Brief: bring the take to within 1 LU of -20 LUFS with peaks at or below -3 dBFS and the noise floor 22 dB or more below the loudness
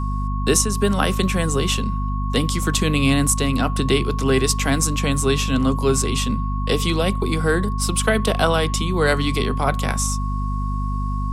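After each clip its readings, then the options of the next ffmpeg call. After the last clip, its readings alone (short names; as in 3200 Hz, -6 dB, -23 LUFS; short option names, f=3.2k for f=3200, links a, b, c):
hum 50 Hz; harmonics up to 250 Hz; hum level -21 dBFS; steady tone 1100 Hz; tone level -30 dBFS; loudness -20.5 LUFS; peak -4.0 dBFS; loudness target -20.0 LUFS
-> -af "bandreject=f=50:t=h:w=4,bandreject=f=100:t=h:w=4,bandreject=f=150:t=h:w=4,bandreject=f=200:t=h:w=4,bandreject=f=250:t=h:w=4"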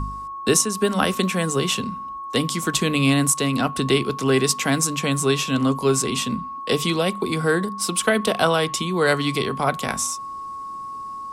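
hum none; steady tone 1100 Hz; tone level -30 dBFS
-> -af "bandreject=f=1.1k:w=30"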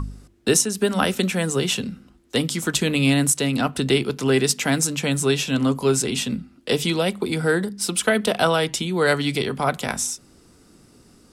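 steady tone none; loudness -21.5 LUFS; peak -5.5 dBFS; loudness target -20.0 LUFS
-> -af "volume=1.5dB"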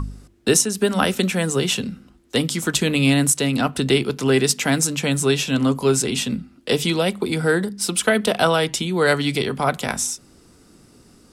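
loudness -20.0 LUFS; peak -4.0 dBFS; noise floor -52 dBFS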